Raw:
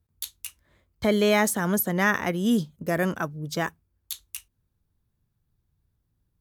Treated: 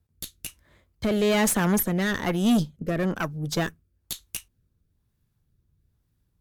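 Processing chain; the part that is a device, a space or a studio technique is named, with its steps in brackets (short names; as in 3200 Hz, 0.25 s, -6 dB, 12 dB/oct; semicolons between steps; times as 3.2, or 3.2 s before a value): overdriven rotary cabinet (tube stage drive 23 dB, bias 0.55; rotary speaker horn 1.1 Hz); 2.7–3.15 high shelf 9000 Hz -> 4700 Hz -11.5 dB; gain +7.5 dB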